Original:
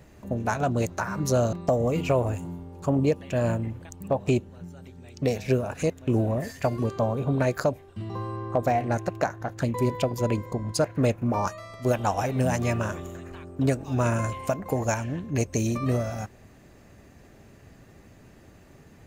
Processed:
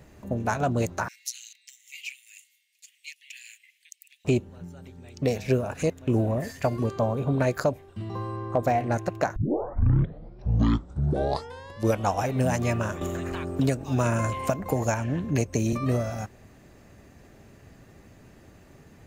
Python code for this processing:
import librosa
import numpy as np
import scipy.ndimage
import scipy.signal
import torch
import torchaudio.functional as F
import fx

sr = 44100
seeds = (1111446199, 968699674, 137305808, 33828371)

y = fx.steep_highpass(x, sr, hz=2000.0, slope=72, at=(1.08, 4.25))
y = fx.band_squash(y, sr, depth_pct=70, at=(13.01, 15.73))
y = fx.edit(y, sr, fx.tape_start(start_s=9.36, length_s=2.8), tone=tone)